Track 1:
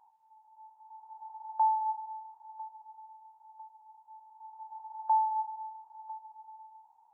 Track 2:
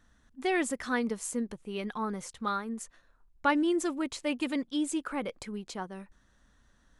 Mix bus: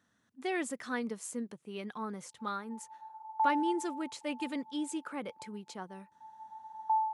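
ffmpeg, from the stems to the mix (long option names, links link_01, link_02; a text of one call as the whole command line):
ffmpeg -i stem1.wav -i stem2.wav -filter_complex "[0:a]highpass=620,agate=range=-15dB:threshold=-56dB:ratio=16:detection=peak,adelay=1800,volume=-2dB[link_01];[1:a]volume=-5.5dB[link_02];[link_01][link_02]amix=inputs=2:normalize=0,highpass=frequency=110:width=0.5412,highpass=frequency=110:width=1.3066" out.wav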